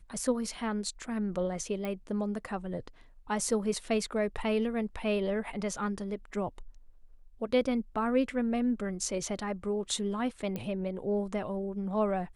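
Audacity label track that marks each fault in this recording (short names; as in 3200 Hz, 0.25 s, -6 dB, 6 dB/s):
1.850000	1.850000	pop -23 dBFS
10.560000	10.560000	pop -22 dBFS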